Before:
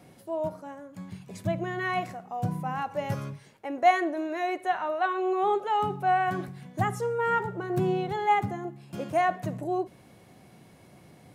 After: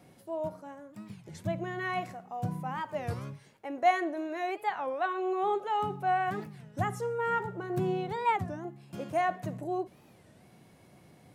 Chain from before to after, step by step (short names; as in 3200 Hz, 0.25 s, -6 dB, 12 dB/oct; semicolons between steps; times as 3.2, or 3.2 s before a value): record warp 33 1/3 rpm, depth 250 cents; gain -4 dB